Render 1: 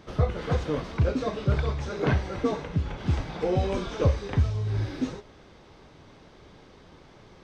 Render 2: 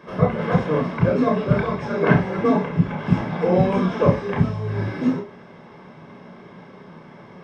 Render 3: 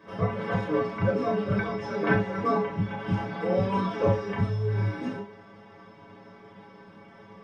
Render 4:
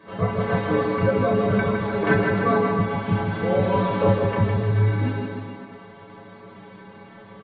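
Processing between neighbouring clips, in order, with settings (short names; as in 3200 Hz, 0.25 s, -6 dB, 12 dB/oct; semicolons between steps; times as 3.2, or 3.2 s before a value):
reverb RT60 0.15 s, pre-delay 27 ms, DRR 2 dB; gain -2 dB
metallic resonator 100 Hz, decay 0.32 s, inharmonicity 0.008; gain +5 dB
on a send: bouncing-ball echo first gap 0.16 s, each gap 0.9×, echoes 5; on the sum: gain +3.5 dB; AC-3 48 kbps 32000 Hz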